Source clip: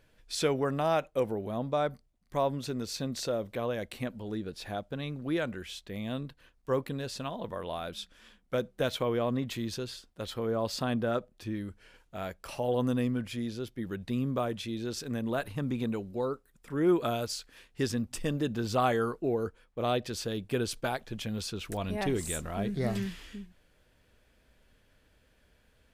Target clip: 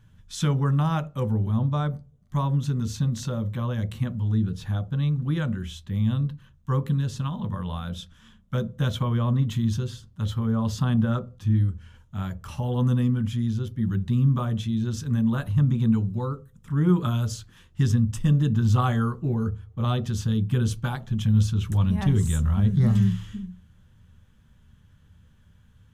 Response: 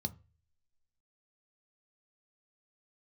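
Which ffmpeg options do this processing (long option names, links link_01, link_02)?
-filter_complex "[0:a]asplit=2[link_01][link_02];[1:a]atrim=start_sample=2205,lowshelf=frequency=170:gain=9[link_03];[link_02][link_03]afir=irnorm=-1:irlink=0,volume=-3.5dB[link_04];[link_01][link_04]amix=inputs=2:normalize=0,volume=2dB"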